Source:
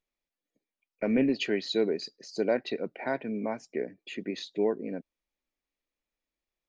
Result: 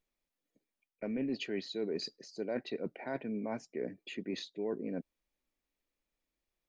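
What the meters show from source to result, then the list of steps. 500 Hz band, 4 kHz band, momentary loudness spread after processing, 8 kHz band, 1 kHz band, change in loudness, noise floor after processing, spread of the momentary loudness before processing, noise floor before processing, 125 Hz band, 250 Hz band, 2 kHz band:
-8.5 dB, -6.5 dB, 7 LU, n/a, -8.5 dB, -8.0 dB, under -85 dBFS, 11 LU, under -85 dBFS, -5.0 dB, -7.5 dB, -8.5 dB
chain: low shelf 450 Hz +4 dB; reverse; compressor 4:1, threshold -35 dBFS, peak gain reduction 14.5 dB; reverse

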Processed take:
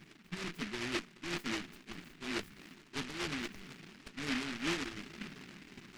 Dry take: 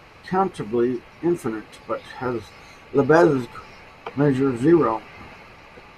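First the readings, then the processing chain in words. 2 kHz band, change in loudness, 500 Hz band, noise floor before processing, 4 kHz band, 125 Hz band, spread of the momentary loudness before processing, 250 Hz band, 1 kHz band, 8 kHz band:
-8.5 dB, -18.0 dB, -25.5 dB, -47 dBFS, +2.5 dB, -20.5 dB, 18 LU, -19.0 dB, -21.0 dB, n/a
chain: Chebyshev high-pass 190 Hz, order 3; reverse; compressor 6:1, threshold -33 dBFS, peak gain reduction 21 dB; reverse; fixed phaser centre 2300 Hz, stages 6; tube stage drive 40 dB, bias 0.5; FFT band-reject 450–7500 Hz; flange 1.2 Hz, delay 0.7 ms, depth 7.2 ms, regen +31%; on a send: swung echo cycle 0.705 s, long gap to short 1.5:1, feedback 60%, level -23.5 dB; on the sum: noise-modulated delay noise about 2000 Hz, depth 0.45 ms; gain +11 dB

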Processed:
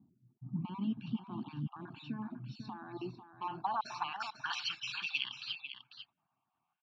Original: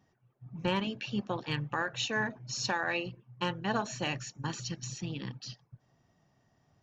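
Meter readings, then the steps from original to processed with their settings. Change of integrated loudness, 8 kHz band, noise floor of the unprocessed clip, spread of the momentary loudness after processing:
-5.5 dB, n/a, -72 dBFS, 11 LU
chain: random spectral dropouts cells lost 31%; graphic EQ 500/1000/2000 Hz -7/+4/+4 dB; low-pass opened by the level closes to 530 Hz, open at -32 dBFS; in parallel at +1 dB: negative-ratio compressor -39 dBFS; on the sum: limiter -26 dBFS, peak gain reduction 10 dB; band-pass sweep 240 Hz -> 2500 Hz, 2.62–4.81; tone controls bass -5 dB, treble +12 dB; fixed phaser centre 1900 Hz, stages 6; on a send: echo 0.496 s -10 dB; on the sum: gain +8.5 dB

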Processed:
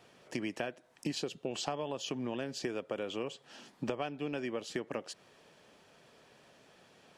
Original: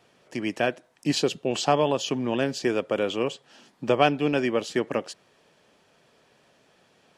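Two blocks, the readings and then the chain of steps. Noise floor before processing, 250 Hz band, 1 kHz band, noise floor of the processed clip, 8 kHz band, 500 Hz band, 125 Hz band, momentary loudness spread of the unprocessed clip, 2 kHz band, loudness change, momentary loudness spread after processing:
-63 dBFS, -11.5 dB, -15.0 dB, -64 dBFS, -9.5 dB, -13.5 dB, -12.0 dB, 10 LU, -12.5 dB, -12.5 dB, 6 LU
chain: compressor 10:1, threshold -33 dBFS, peak gain reduction 19 dB

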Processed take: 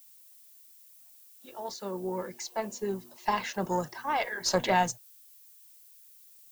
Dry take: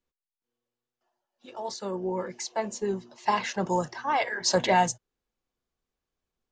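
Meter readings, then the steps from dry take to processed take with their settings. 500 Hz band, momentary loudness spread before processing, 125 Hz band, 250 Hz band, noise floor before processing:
-3.5 dB, 12 LU, -3.0 dB, -3.0 dB, under -85 dBFS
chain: added harmonics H 2 -14 dB, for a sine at -10 dBFS; added noise violet -52 dBFS; stuck buffer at 5.06, times 3; gain -3.5 dB

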